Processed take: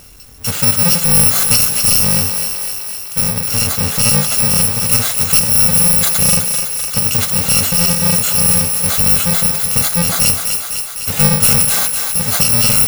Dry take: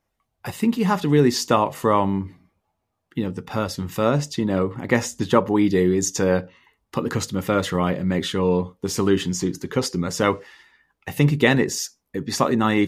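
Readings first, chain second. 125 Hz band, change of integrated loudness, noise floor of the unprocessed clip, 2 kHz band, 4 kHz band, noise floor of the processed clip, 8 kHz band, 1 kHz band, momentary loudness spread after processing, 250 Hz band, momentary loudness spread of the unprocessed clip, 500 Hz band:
+5.0 dB, +11.0 dB, -77 dBFS, +5.5 dB, +13.5 dB, -26 dBFS, +19.5 dB, -0.5 dB, 8 LU, -1.5 dB, 10 LU, -5.0 dB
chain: bit-reversed sample order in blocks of 128 samples; thinning echo 253 ms, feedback 48%, high-pass 450 Hz, level -10.5 dB; power-law waveshaper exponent 0.5

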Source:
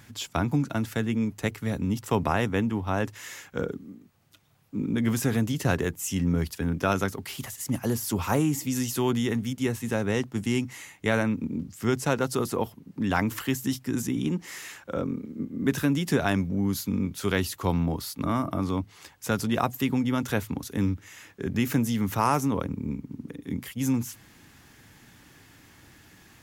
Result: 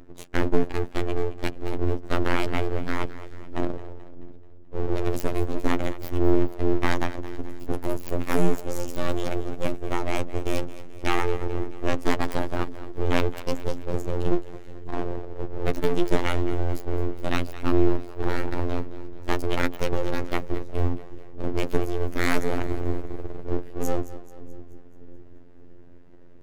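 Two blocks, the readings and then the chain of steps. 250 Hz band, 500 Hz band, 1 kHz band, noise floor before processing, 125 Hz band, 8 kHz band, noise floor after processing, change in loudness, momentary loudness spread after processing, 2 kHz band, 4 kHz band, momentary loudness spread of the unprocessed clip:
-2.5 dB, +3.0 dB, -0.5 dB, -55 dBFS, -2.0 dB, -8.5 dB, -41 dBFS, -1.0 dB, 11 LU, 0.0 dB, -1.5 dB, 10 LU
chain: local Wiener filter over 41 samples; peaking EQ 160 Hz +14 dB 0.36 oct; in parallel at 0 dB: gain riding 2 s; on the sum: full-wave rectifier; on a send: two-band feedback delay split 410 Hz, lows 601 ms, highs 216 ms, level -15 dB; on the sum: robot voice 87.5 Hz; trim -2.5 dB

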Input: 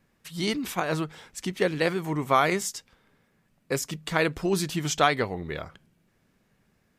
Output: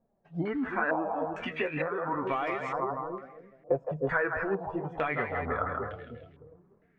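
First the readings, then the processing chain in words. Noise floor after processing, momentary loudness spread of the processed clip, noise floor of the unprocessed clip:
-68 dBFS, 10 LU, -69 dBFS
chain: de-esser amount 100%; on a send: two-band feedback delay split 470 Hz, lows 303 ms, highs 161 ms, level -7 dB; on the sum: compression 6:1, threshold -31 dBFS, peak gain reduction 12 dB; flange 0.29 Hz, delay 4.2 ms, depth 9.4 ms, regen +43%; spectral noise reduction 12 dB; in parallel at -6 dB: saturation -34 dBFS, distortion -15 dB; on the sum: careless resampling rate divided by 3×, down none, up hold; step-sequenced low-pass 2.2 Hz 680–3000 Hz; trim +4 dB

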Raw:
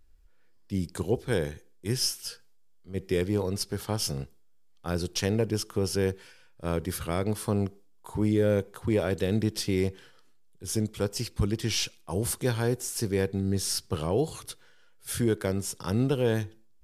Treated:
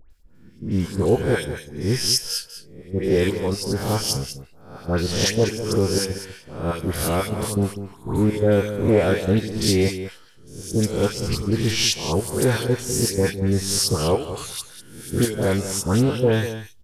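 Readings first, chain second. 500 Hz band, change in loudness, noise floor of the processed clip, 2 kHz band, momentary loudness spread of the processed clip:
+7.5 dB, +7.0 dB, -47 dBFS, +8.5 dB, 12 LU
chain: reverse spectral sustain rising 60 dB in 0.62 s; trance gate "x.xx.xx.xxx.x.xx" 123 bpm -12 dB; phase dispersion highs, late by 107 ms, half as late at 1.5 kHz; on a send: delay 197 ms -11.5 dB; on the sum: loudspeaker Doppler distortion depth 0.14 ms; trim +7 dB

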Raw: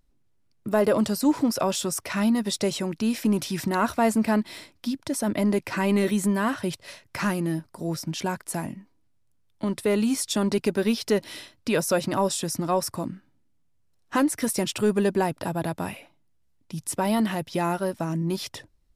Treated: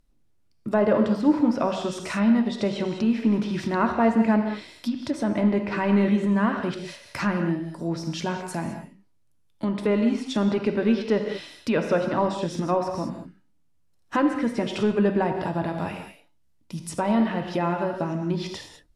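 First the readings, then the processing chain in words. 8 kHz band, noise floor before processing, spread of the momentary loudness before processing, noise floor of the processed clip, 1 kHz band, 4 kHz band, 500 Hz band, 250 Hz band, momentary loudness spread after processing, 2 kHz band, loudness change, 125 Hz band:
-12.0 dB, -65 dBFS, 12 LU, -62 dBFS, +1.0 dB, -4.0 dB, +1.0 dB, +2.0 dB, 11 LU, +0.5 dB, +1.0 dB, +1.5 dB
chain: gated-style reverb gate 230 ms flat, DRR 4.5 dB; low-pass that closes with the level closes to 2.5 kHz, closed at -21 dBFS

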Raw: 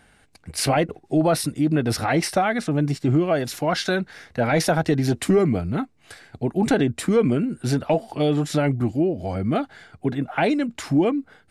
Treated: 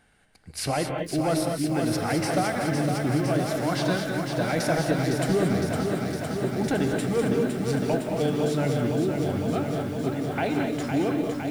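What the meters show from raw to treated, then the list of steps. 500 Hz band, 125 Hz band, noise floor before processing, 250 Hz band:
-3.0 dB, -3.0 dB, -57 dBFS, -3.5 dB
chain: gated-style reverb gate 250 ms rising, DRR 3 dB; bit-crushed delay 509 ms, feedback 80%, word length 7-bit, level -5.5 dB; trim -7 dB

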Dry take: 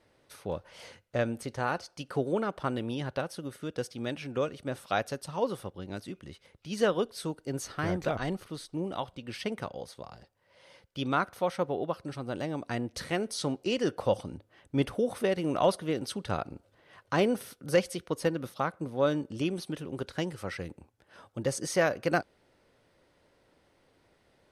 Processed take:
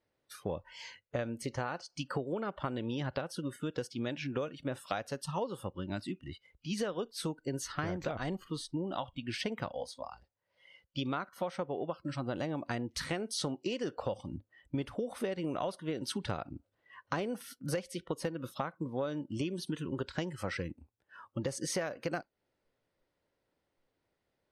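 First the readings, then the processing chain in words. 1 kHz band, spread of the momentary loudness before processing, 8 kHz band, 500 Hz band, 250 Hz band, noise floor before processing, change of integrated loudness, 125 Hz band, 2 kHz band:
-6.0 dB, 13 LU, -2.0 dB, -7.0 dB, -4.0 dB, -68 dBFS, -5.5 dB, -3.0 dB, -6.0 dB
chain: spectral noise reduction 19 dB; treble shelf 12 kHz -5.5 dB; compression 12:1, threshold -35 dBFS, peak gain reduction 17 dB; trim +3.5 dB

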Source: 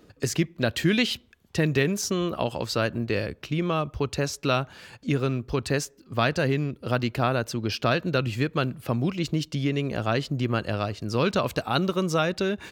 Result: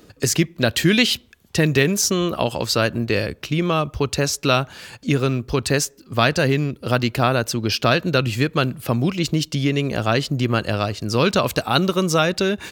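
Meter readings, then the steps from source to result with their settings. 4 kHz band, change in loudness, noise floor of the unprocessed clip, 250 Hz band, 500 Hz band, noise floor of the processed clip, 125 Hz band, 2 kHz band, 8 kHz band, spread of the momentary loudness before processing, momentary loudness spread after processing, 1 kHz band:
+8.5 dB, +6.5 dB, -59 dBFS, +5.5 dB, +5.5 dB, -53 dBFS, +5.5 dB, +7.0 dB, +10.5 dB, 5 LU, 6 LU, +6.0 dB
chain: treble shelf 4.1 kHz +7 dB; trim +5.5 dB

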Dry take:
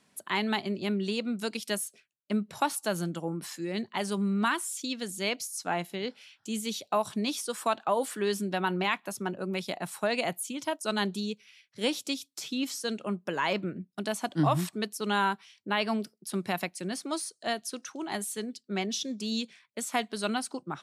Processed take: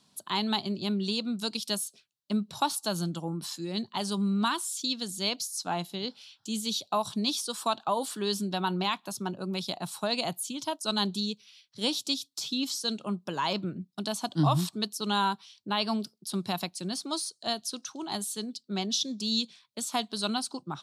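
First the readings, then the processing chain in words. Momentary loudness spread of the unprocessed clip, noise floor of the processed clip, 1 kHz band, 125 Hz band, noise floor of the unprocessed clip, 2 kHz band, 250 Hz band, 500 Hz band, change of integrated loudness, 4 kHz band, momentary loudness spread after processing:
8 LU, -70 dBFS, 0.0 dB, +2.0 dB, -71 dBFS, -5.5 dB, +0.5 dB, -3.0 dB, +0.5 dB, +5.0 dB, 7 LU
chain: graphic EQ 125/500/1000/2000/4000 Hz +4/-5/+4/-12/+10 dB

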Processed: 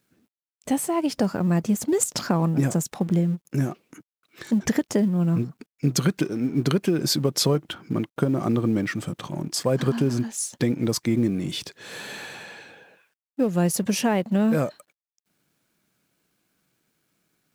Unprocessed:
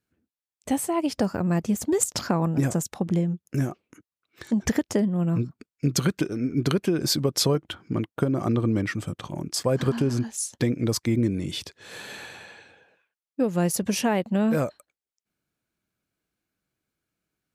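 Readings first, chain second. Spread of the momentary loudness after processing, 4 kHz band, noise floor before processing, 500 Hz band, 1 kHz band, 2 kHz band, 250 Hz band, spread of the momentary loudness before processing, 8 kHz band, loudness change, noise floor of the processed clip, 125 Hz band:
12 LU, +1.0 dB, under -85 dBFS, +1.0 dB, +0.5 dB, +1.0 dB, +2.0 dB, 11 LU, +1.0 dB, +1.5 dB, under -85 dBFS, +1.5 dB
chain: companding laws mixed up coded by mu; resonant low shelf 110 Hz -7 dB, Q 1.5

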